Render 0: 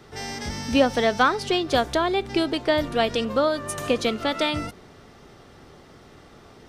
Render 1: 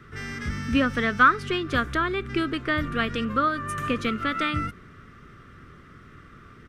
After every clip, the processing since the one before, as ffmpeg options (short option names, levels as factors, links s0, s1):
-af "firequalizer=gain_entry='entry(130,0);entry(830,-22);entry(1200,3);entry(4300,-15);entry(8100,-12)':delay=0.05:min_phase=1,volume=1.5"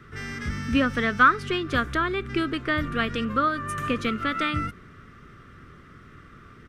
-af anull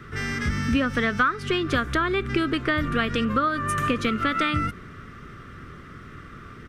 -af "acompressor=threshold=0.0501:ratio=4,volume=2"